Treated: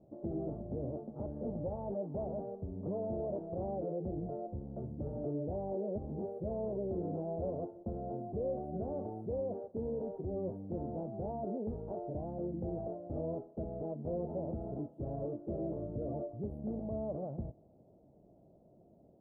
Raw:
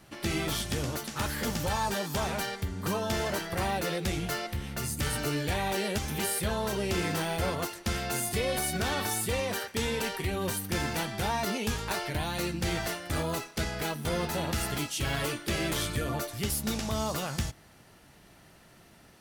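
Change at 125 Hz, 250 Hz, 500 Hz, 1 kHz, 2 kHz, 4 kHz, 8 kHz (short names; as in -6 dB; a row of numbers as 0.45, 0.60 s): -8.0 dB, -5.0 dB, -3.5 dB, -13.0 dB, under -40 dB, under -40 dB, under -40 dB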